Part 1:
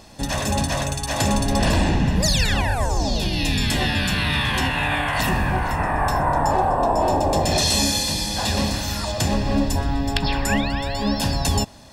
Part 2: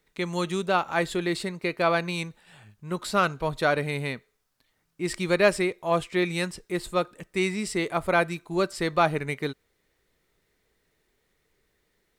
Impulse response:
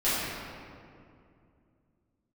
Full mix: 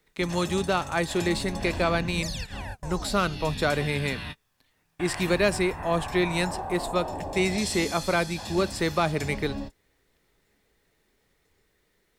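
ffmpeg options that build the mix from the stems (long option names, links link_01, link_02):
-filter_complex "[0:a]volume=-14.5dB[link_01];[1:a]acrossover=split=310|3000[link_02][link_03][link_04];[link_03]acompressor=threshold=-28dB:ratio=2[link_05];[link_02][link_05][link_04]amix=inputs=3:normalize=0,volume=2dB,asplit=2[link_06][link_07];[link_07]apad=whole_len=526012[link_08];[link_01][link_08]sidechaingate=range=-42dB:threshold=-50dB:ratio=16:detection=peak[link_09];[link_09][link_06]amix=inputs=2:normalize=0"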